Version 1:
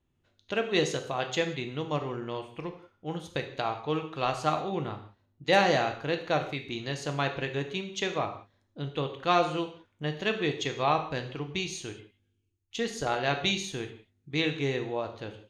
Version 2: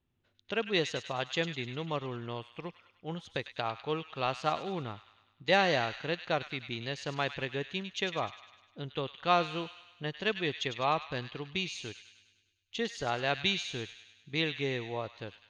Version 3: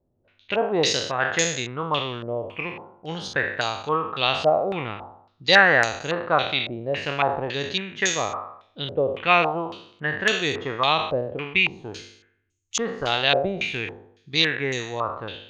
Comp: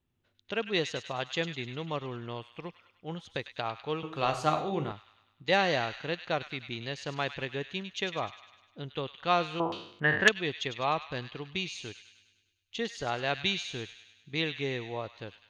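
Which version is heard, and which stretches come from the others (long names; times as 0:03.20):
2
0:04.03–0:04.92: punch in from 1
0:09.60–0:10.29: punch in from 3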